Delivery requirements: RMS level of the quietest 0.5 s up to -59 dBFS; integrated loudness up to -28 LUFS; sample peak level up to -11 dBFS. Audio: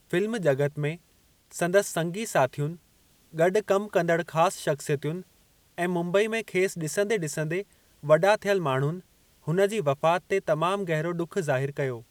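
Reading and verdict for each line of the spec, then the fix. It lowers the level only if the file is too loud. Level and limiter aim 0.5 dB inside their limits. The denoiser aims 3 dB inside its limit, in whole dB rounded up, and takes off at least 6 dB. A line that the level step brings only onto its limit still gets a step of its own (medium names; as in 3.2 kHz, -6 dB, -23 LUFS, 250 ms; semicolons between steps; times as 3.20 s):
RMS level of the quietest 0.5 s -63 dBFS: pass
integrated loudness -26.5 LUFS: fail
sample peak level -7.5 dBFS: fail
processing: trim -2 dB; peak limiter -11.5 dBFS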